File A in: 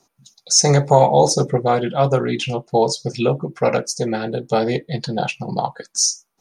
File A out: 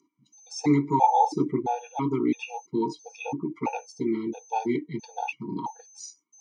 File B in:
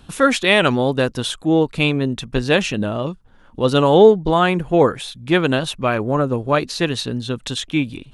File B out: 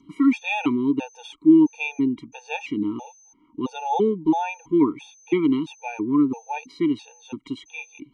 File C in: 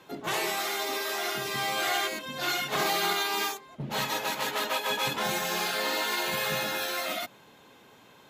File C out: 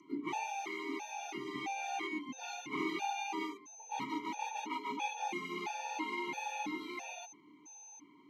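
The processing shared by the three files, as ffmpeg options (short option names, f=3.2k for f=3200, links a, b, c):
-filter_complex "[0:a]asplit=3[a][b][c];[a]bandpass=f=300:t=q:w=8,volume=0dB[d];[b]bandpass=f=870:t=q:w=8,volume=-6dB[e];[c]bandpass=f=2.24k:t=q:w=8,volume=-9dB[f];[d][e][f]amix=inputs=3:normalize=0,aeval=exprs='val(0)+0.00112*sin(2*PI*6200*n/s)':c=same,afftfilt=real='re*gt(sin(2*PI*1.5*pts/sr)*(1-2*mod(floor(b*sr/1024/470),2)),0)':imag='im*gt(sin(2*PI*1.5*pts/sr)*(1-2*mod(floor(b*sr/1024/470),2)),0)':win_size=1024:overlap=0.75,volume=8dB"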